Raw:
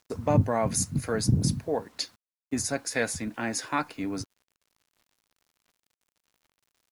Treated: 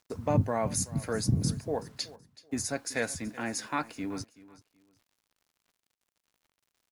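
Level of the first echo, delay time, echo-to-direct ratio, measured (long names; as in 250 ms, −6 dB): −19.0 dB, 378 ms, −19.0 dB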